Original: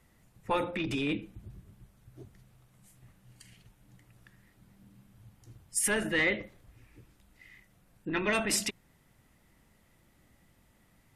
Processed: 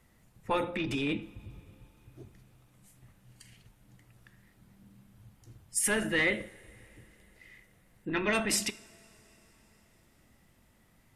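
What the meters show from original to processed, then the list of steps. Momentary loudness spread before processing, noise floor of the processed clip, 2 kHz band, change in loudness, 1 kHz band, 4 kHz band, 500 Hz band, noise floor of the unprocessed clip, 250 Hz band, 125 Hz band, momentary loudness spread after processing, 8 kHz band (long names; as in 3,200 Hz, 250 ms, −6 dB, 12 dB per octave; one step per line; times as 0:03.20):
10 LU, −65 dBFS, 0.0 dB, 0.0 dB, −0.5 dB, 0.0 dB, 0.0 dB, −66 dBFS, +0.5 dB, 0.0 dB, 20 LU, 0.0 dB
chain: coupled-rooms reverb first 0.54 s, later 4.5 s, from −18 dB, DRR 14.5 dB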